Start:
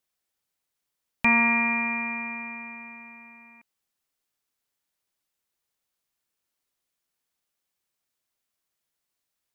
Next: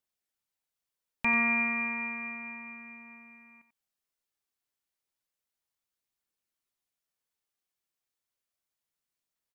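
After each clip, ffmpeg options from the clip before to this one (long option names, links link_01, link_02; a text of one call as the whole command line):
ffmpeg -i in.wav -af "aphaser=in_gain=1:out_gain=1:delay=3:decay=0.2:speed=0.32:type=triangular,aecho=1:1:91:0.282,volume=-7dB" out.wav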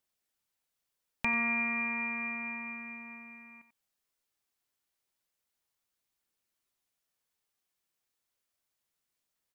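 ffmpeg -i in.wav -af "acompressor=threshold=-37dB:ratio=2,volume=3.5dB" out.wav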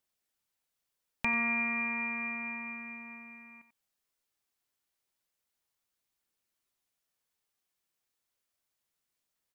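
ffmpeg -i in.wav -af anull out.wav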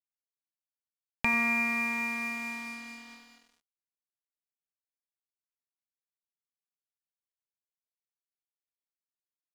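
ffmpeg -i in.wav -af "aeval=exprs='sgn(val(0))*max(abs(val(0))-0.00398,0)':channel_layout=same,volume=4dB" out.wav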